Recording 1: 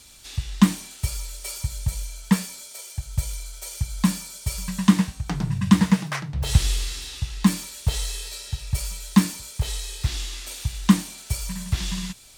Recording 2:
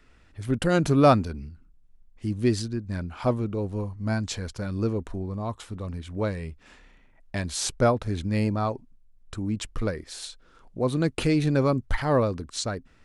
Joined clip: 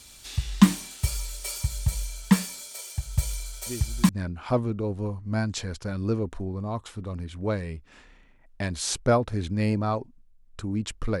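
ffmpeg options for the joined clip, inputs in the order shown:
ffmpeg -i cue0.wav -i cue1.wav -filter_complex "[1:a]asplit=2[link_01][link_02];[0:a]apad=whole_dur=11.2,atrim=end=11.2,atrim=end=4.092[link_03];[link_02]atrim=start=2.828:end=9.94[link_04];[link_01]atrim=start=2.4:end=2.83,asetpts=PTS-STARTPTS,volume=-13.5dB,afade=type=in:duration=0.004:curve=hsin,afade=type=out:start_time=0.426:duration=0.004:curve=hsin,adelay=3660[link_05];[link_03][link_04]acrossfade=duration=0.004:curve1=hsin:curve2=hsin[link_06];[link_06][link_05]amix=inputs=2:normalize=0" out.wav

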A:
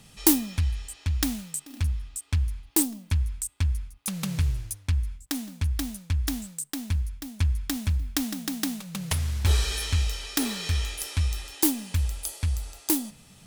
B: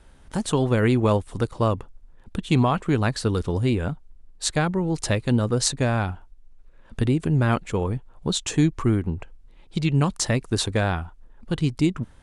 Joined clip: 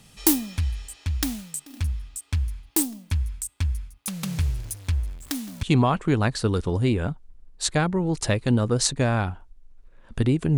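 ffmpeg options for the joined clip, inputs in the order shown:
ffmpeg -i cue0.wav -i cue1.wav -filter_complex "[0:a]asettb=1/sr,asplit=3[link_01][link_02][link_03];[link_01]atrim=end=4.264[link_04];[link_02]atrim=start=4.26:end=5.63,asetpts=PTS-STARTPTS,afade=type=in:duration=0.004:curve=qsin,afade=type=out:start_time=1.366:duration=0.004:curve=qsin,aeval=exprs='val(0)+0.5*0.01*sgn(val(0))':channel_layout=same[link_05];[link_03]atrim=start=5.626[link_06];[link_04][link_05]acrossfade=duration=0.004:curve1=hsin:curve2=qsin[link_07];[link_07][link_06]acrossfade=duration=0.004:curve1=qsin:curve2=hsin,apad=whole_dur=10.57,atrim=end=10.57,atrim=end=5.632[link_08];[1:a]atrim=start=2.438:end=7.38[link_09];[link_08][link_09]acrossfade=duration=0.004:curve1=hsin:curve2=hsin" out.wav

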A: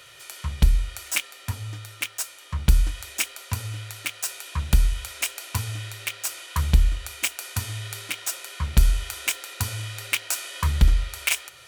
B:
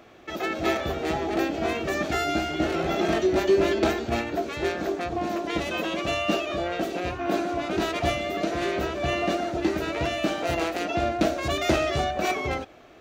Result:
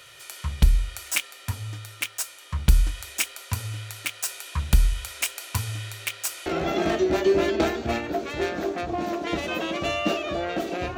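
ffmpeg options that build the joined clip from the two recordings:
ffmpeg -i cue0.wav -i cue1.wav -filter_complex "[0:a]apad=whole_dur=10.97,atrim=end=10.97,atrim=end=6.462[link_01];[1:a]atrim=start=2.688:end=7.2[link_02];[link_01][link_02]acrossfade=duration=0.004:curve1=hsin:curve2=hsin" out.wav

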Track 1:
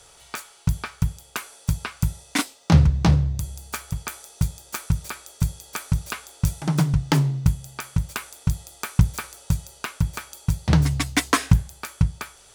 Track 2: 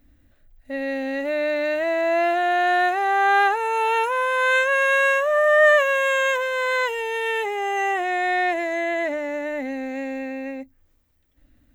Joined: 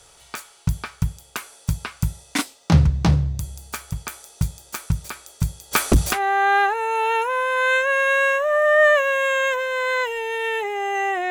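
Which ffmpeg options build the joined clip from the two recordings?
ffmpeg -i cue0.wav -i cue1.wav -filter_complex "[0:a]asplit=3[link_01][link_02][link_03];[link_01]afade=type=out:start_time=5.71:duration=0.02[link_04];[link_02]aeval=exprs='0.376*sin(PI/2*3.16*val(0)/0.376)':channel_layout=same,afade=type=in:start_time=5.71:duration=0.02,afade=type=out:start_time=6.2:duration=0.02[link_05];[link_03]afade=type=in:start_time=6.2:duration=0.02[link_06];[link_04][link_05][link_06]amix=inputs=3:normalize=0,apad=whole_dur=11.3,atrim=end=11.3,atrim=end=6.2,asetpts=PTS-STARTPTS[link_07];[1:a]atrim=start=2.9:end=8.12,asetpts=PTS-STARTPTS[link_08];[link_07][link_08]acrossfade=duration=0.12:curve1=tri:curve2=tri" out.wav

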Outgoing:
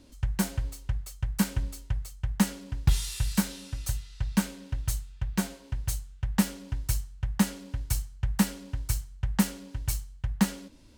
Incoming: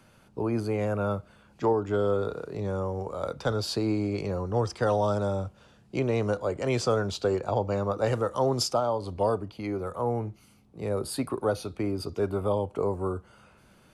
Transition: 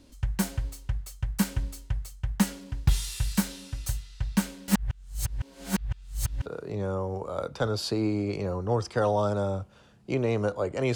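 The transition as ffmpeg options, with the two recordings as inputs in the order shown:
ffmpeg -i cue0.wav -i cue1.wav -filter_complex "[0:a]apad=whole_dur=10.95,atrim=end=10.95,asplit=2[link_01][link_02];[link_01]atrim=end=4.682[link_03];[link_02]atrim=start=4.678:end=6.462,asetpts=PTS-STARTPTS,areverse[link_04];[1:a]atrim=start=2.308:end=6.8[link_05];[link_03][link_04]acrossfade=duration=0.004:curve1=hsin:curve2=hsin[link_06];[link_06][link_05]acrossfade=duration=0.004:curve1=hsin:curve2=hsin" out.wav

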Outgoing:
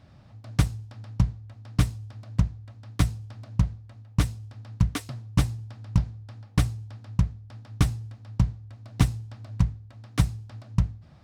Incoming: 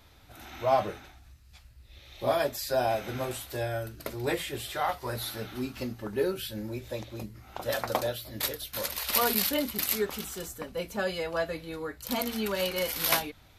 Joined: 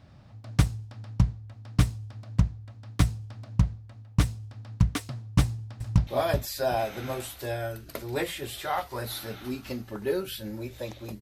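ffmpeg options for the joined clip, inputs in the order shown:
ffmpeg -i cue0.wav -i cue1.wav -filter_complex "[0:a]apad=whole_dur=11.21,atrim=end=11.21,atrim=end=6.072[link_01];[1:a]atrim=start=2.178:end=7.32[link_02];[link_01][link_02]acrossfade=duration=0.004:curve1=hsin:curve2=hsin,asplit=2[link_03][link_04];[link_04]afade=type=in:start_time=5.42:duration=0.01,afade=type=out:start_time=6.07:duration=0.01,aecho=0:1:380|760|1140:0.421697|0.105424|0.026356[link_05];[link_03][link_05]amix=inputs=2:normalize=0" out.wav

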